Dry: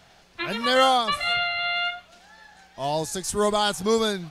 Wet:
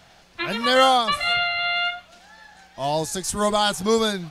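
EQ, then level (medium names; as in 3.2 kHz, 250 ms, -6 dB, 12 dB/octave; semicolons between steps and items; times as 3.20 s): band-stop 410 Hz, Q 13; +2.5 dB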